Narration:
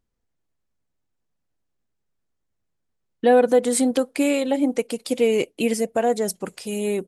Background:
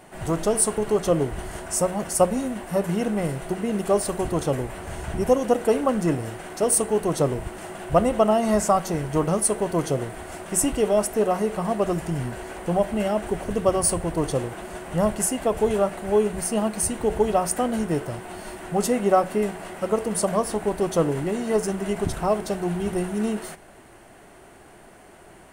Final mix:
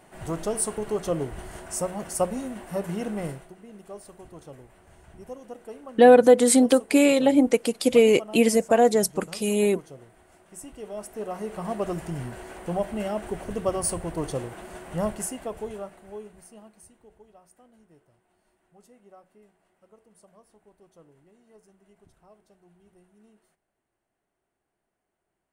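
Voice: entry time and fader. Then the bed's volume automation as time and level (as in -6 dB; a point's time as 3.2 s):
2.75 s, +2.5 dB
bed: 3.3 s -6 dB
3.53 s -20.5 dB
10.62 s -20.5 dB
11.7 s -5.5 dB
15.06 s -5.5 dB
17.25 s -33.5 dB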